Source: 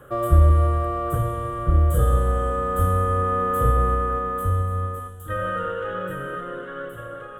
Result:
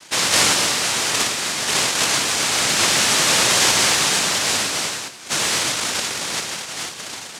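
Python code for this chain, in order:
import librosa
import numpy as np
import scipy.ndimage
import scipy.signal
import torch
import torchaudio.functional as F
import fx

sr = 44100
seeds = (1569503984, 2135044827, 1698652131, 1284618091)

y = fx.dynamic_eq(x, sr, hz=1800.0, q=0.95, threshold_db=-38.0, ratio=4.0, max_db=6)
y = fx.noise_vocoder(y, sr, seeds[0], bands=1)
y = y * librosa.db_to_amplitude(3.0)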